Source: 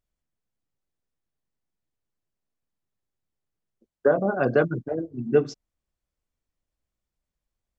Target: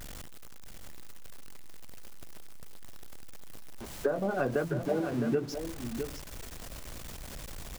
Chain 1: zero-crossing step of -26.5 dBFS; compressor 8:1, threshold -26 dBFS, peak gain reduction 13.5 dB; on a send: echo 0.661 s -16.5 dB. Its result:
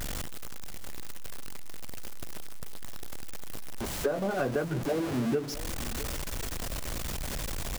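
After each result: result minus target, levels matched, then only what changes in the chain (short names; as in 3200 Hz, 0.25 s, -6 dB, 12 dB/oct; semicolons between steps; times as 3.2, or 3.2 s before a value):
echo-to-direct -9 dB; zero-crossing step: distortion +8 dB
change: echo 0.661 s -7.5 dB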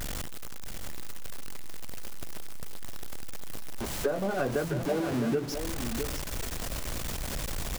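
zero-crossing step: distortion +8 dB
change: zero-crossing step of -35.5 dBFS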